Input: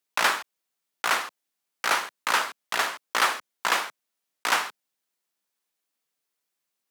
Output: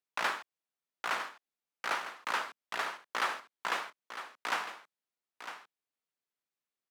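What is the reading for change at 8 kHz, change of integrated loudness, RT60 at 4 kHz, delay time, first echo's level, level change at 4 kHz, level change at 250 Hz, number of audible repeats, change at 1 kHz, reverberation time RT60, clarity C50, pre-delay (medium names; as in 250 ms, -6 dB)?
-15.0 dB, -10.5 dB, no reverb, 954 ms, -11.0 dB, -11.5 dB, -8.5 dB, 1, -8.5 dB, no reverb, no reverb, no reverb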